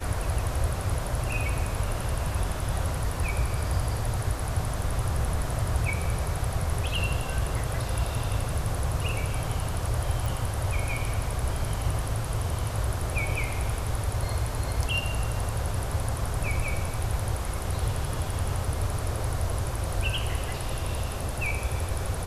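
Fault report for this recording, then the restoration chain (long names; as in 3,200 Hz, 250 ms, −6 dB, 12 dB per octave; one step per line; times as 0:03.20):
0:10.26: click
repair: click removal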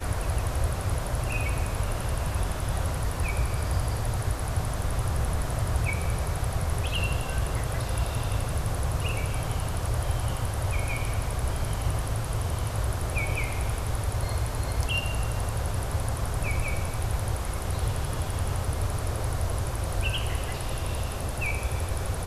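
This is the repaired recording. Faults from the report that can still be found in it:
none of them is left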